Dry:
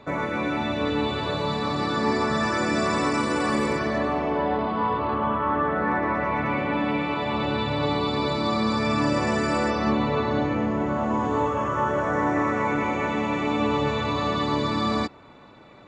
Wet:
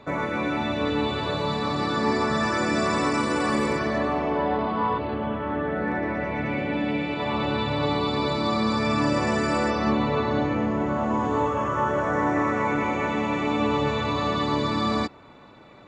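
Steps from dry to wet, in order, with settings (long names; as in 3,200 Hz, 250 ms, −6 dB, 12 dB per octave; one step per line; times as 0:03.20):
0:04.98–0:07.20: parametric band 1,100 Hz −13 dB 0.58 octaves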